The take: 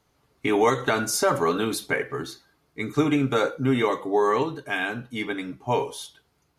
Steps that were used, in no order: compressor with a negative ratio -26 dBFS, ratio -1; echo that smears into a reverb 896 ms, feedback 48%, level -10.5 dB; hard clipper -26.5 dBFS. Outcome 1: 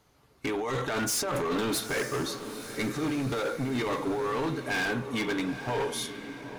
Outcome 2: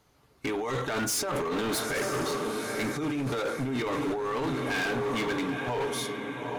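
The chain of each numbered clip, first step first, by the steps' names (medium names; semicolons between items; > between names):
compressor with a negative ratio > hard clipper > echo that smears into a reverb; echo that smears into a reverb > compressor with a negative ratio > hard clipper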